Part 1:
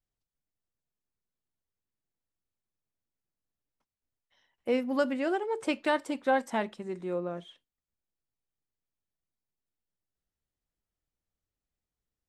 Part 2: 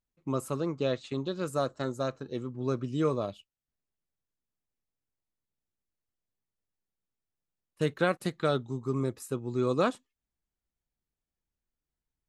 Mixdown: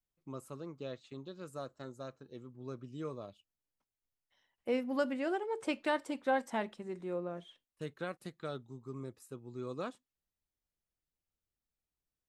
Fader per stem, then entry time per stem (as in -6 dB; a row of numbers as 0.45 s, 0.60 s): -5.0 dB, -13.5 dB; 0.00 s, 0.00 s